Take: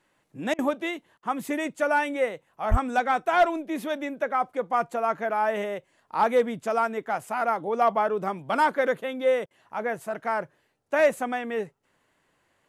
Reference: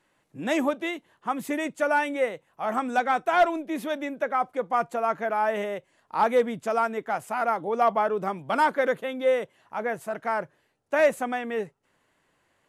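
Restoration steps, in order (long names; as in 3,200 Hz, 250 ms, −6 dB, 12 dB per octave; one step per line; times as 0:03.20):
0:02.70–0:02.82: high-pass filter 140 Hz 24 dB per octave
repair the gap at 0:00.54/0:01.18/0:09.46, 46 ms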